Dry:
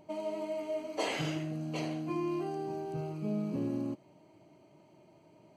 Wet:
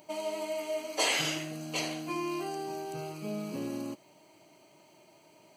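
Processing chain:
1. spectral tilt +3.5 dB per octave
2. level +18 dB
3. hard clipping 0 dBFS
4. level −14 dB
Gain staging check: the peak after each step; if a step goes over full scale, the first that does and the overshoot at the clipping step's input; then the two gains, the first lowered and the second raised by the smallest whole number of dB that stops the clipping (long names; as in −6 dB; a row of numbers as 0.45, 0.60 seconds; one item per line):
−20.0, −2.0, −2.0, −16.0 dBFS
no step passes full scale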